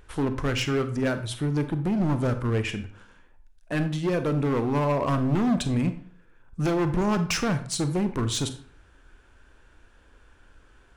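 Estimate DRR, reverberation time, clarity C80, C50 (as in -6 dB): 9.5 dB, 0.55 s, 15.5 dB, 12.0 dB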